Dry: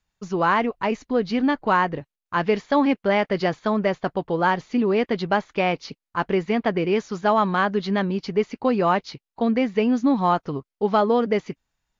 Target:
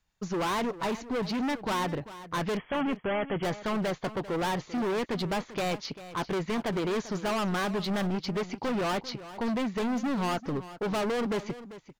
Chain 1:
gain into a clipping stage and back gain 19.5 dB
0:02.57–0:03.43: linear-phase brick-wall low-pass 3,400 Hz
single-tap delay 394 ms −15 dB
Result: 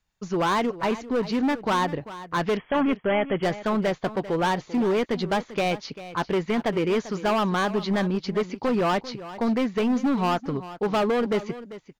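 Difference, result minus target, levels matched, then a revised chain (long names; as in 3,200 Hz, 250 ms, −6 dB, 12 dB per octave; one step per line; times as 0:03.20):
gain into a clipping stage and back: distortion −5 dB
gain into a clipping stage and back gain 27.5 dB
0:02.57–0:03.43: linear-phase brick-wall low-pass 3,400 Hz
single-tap delay 394 ms −15 dB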